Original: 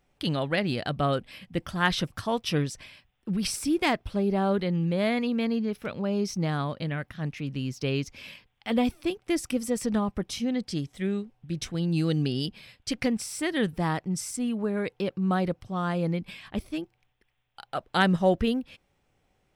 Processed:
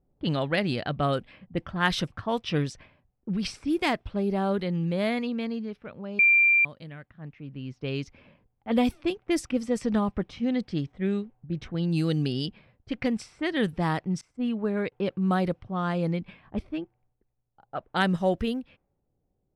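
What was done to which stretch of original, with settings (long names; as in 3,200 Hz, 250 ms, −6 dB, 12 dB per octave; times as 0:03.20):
0:06.19–0:06.65: beep over 2,370 Hz −6 dBFS
0:09.46–0:09.98: high-shelf EQ 7,800 Hz −7 dB
0:14.21–0:14.92: downward expander −29 dBFS
whole clip: low-pass that shuts in the quiet parts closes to 460 Hz, open at −21.5 dBFS; speech leveller 2 s; level −8 dB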